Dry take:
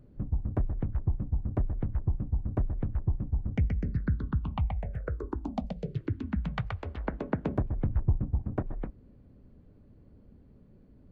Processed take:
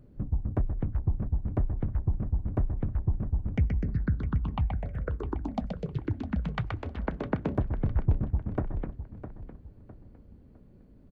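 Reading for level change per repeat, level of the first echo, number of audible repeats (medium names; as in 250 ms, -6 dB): -10.0 dB, -11.5 dB, 3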